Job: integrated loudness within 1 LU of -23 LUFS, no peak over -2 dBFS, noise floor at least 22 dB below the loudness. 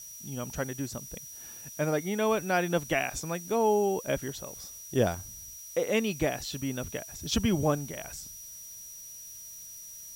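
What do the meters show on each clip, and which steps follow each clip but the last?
steady tone 5800 Hz; tone level -44 dBFS; noise floor -45 dBFS; noise floor target -53 dBFS; loudness -30.5 LUFS; peak -13.0 dBFS; loudness target -23.0 LUFS
-> notch 5800 Hz, Q 30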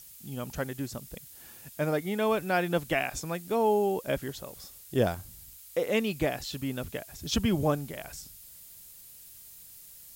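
steady tone none; noise floor -50 dBFS; noise floor target -53 dBFS
-> denoiser 6 dB, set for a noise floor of -50 dBFS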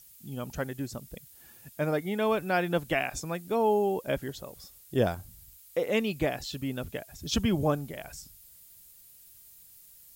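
noise floor -55 dBFS; loudness -30.5 LUFS; peak -13.0 dBFS; loudness target -23.0 LUFS
-> gain +7.5 dB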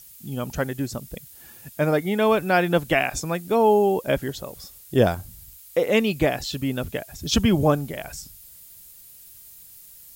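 loudness -23.0 LUFS; peak -5.5 dBFS; noise floor -47 dBFS

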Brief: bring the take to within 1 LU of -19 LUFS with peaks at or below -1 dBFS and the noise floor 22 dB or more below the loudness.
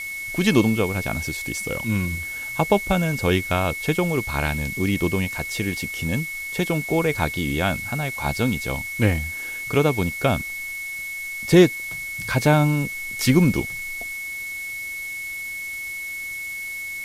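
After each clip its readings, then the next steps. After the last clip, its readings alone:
steady tone 2200 Hz; tone level -29 dBFS; noise floor -32 dBFS; noise floor target -45 dBFS; loudness -23.0 LUFS; peak -3.5 dBFS; loudness target -19.0 LUFS
-> notch 2200 Hz, Q 30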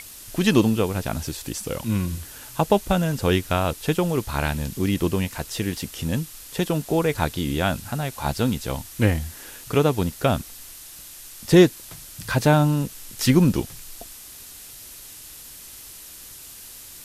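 steady tone none; noise floor -42 dBFS; noise floor target -45 dBFS
-> denoiser 6 dB, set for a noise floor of -42 dBFS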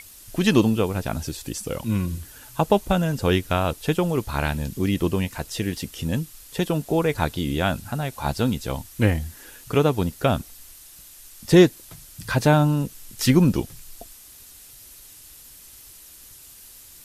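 noise floor -46 dBFS; loudness -23.0 LUFS; peak -3.5 dBFS; loudness target -19.0 LUFS
-> gain +4 dB; limiter -1 dBFS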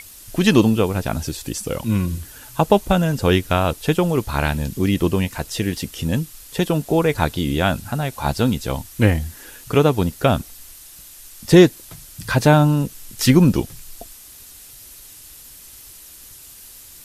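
loudness -19.0 LUFS; peak -1.0 dBFS; noise floor -42 dBFS

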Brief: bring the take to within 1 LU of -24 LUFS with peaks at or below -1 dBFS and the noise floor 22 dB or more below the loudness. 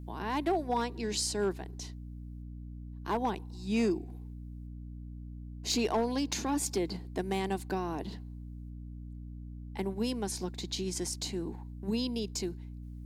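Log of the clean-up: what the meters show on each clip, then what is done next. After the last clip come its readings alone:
clipped 0.3%; flat tops at -22.5 dBFS; hum 60 Hz; harmonics up to 300 Hz; hum level -41 dBFS; loudness -33.5 LUFS; peak -22.5 dBFS; loudness target -24.0 LUFS
-> clip repair -22.5 dBFS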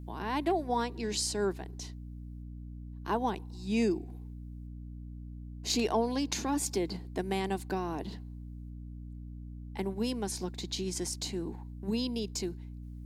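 clipped 0.0%; hum 60 Hz; harmonics up to 300 Hz; hum level -41 dBFS
-> notches 60/120/180/240/300 Hz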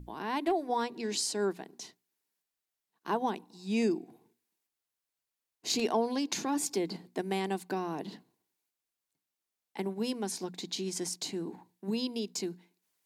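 hum none; loudness -33.5 LUFS; peak -15.0 dBFS; loudness target -24.0 LUFS
-> gain +9.5 dB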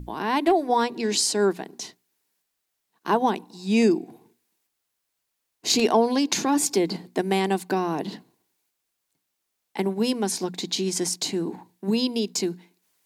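loudness -24.0 LUFS; peak -5.5 dBFS; noise floor -79 dBFS

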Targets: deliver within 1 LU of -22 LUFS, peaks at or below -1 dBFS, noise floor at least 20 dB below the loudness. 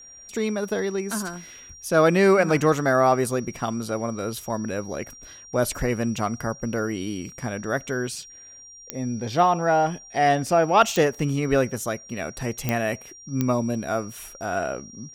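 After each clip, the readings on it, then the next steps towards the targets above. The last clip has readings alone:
clicks 4; steady tone 5700 Hz; tone level -43 dBFS; loudness -24.0 LUFS; peak -4.5 dBFS; loudness target -22.0 LUFS
-> de-click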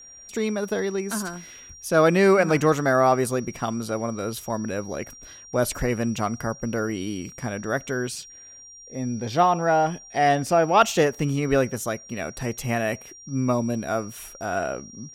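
clicks 0; steady tone 5700 Hz; tone level -43 dBFS
-> notch 5700 Hz, Q 30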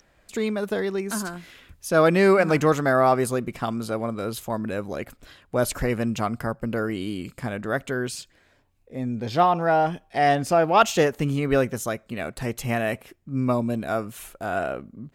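steady tone none; loudness -24.0 LUFS; peak -4.5 dBFS; loudness target -22.0 LUFS
-> gain +2 dB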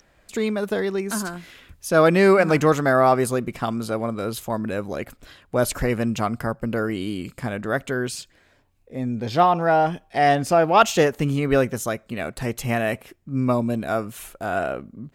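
loudness -22.0 LUFS; peak -2.5 dBFS; noise floor -60 dBFS

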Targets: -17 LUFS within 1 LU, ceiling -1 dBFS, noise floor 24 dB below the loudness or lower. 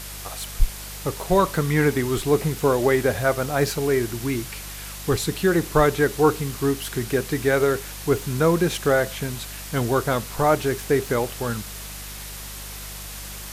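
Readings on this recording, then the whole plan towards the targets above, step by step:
hum 50 Hz; harmonics up to 200 Hz; hum level -38 dBFS; noise floor -36 dBFS; noise floor target -47 dBFS; loudness -23.0 LUFS; peak -4.0 dBFS; loudness target -17.0 LUFS
-> de-hum 50 Hz, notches 4; denoiser 11 dB, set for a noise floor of -36 dBFS; gain +6 dB; limiter -1 dBFS

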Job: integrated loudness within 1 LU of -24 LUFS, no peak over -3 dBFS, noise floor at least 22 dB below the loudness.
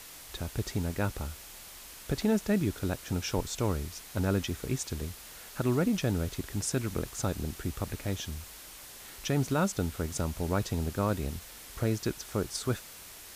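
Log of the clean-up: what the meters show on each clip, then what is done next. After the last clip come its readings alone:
noise floor -48 dBFS; noise floor target -55 dBFS; loudness -32.5 LUFS; peak -16.5 dBFS; loudness target -24.0 LUFS
-> noise print and reduce 7 dB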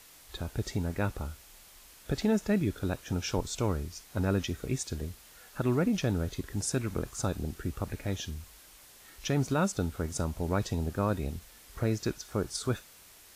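noise floor -55 dBFS; loudness -32.5 LUFS; peak -17.0 dBFS; loudness target -24.0 LUFS
-> gain +8.5 dB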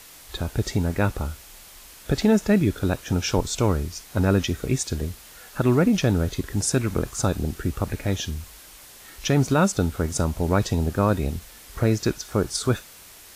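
loudness -24.0 LUFS; peak -8.5 dBFS; noise floor -46 dBFS

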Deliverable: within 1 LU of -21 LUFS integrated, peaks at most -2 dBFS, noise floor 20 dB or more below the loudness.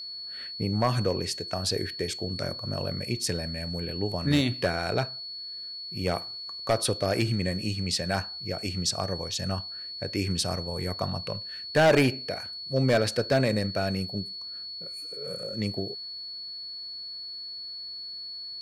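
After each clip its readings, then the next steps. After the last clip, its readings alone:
clipped 0.4%; flat tops at -15.5 dBFS; steady tone 4400 Hz; tone level -36 dBFS; loudness -29.0 LUFS; peak -15.5 dBFS; loudness target -21.0 LUFS
-> clip repair -15.5 dBFS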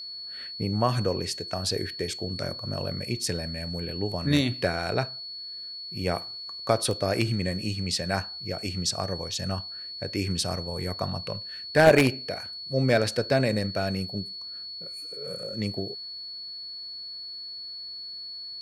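clipped 0.0%; steady tone 4400 Hz; tone level -36 dBFS
-> notch 4400 Hz, Q 30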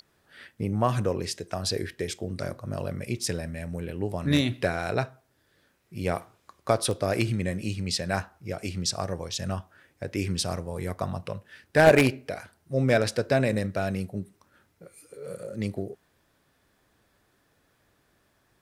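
steady tone none; loudness -28.0 LUFS; peak -6.0 dBFS; loudness target -21.0 LUFS
-> gain +7 dB; limiter -2 dBFS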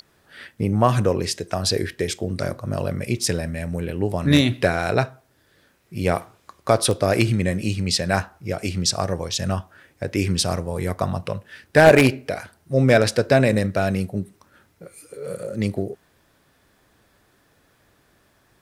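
loudness -21.5 LUFS; peak -2.0 dBFS; noise floor -62 dBFS

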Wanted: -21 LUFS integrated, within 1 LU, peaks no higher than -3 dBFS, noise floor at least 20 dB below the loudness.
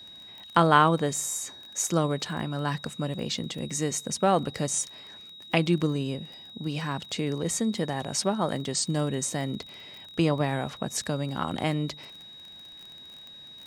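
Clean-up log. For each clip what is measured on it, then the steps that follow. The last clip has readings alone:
ticks 23/s; steady tone 3800 Hz; tone level -44 dBFS; loudness -28.0 LUFS; peak -6.0 dBFS; loudness target -21.0 LUFS
-> de-click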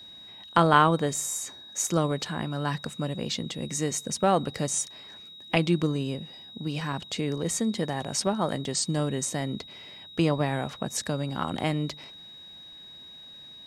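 ticks 0/s; steady tone 3800 Hz; tone level -44 dBFS
-> notch 3800 Hz, Q 30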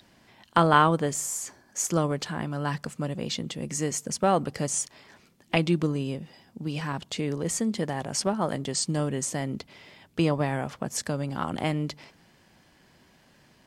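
steady tone none; loudness -28.0 LUFS; peak -6.0 dBFS; loudness target -21.0 LUFS
-> gain +7 dB; limiter -3 dBFS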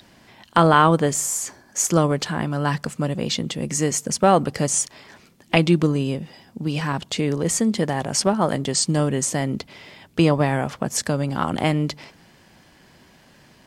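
loudness -21.5 LUFS; peak -3.0 dBFS; noise floor -53 dBFS

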